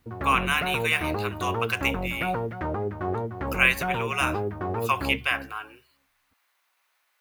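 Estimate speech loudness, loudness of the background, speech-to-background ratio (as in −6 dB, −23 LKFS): −26.5 LKFS, −30.5 LKFS, 4.0 dB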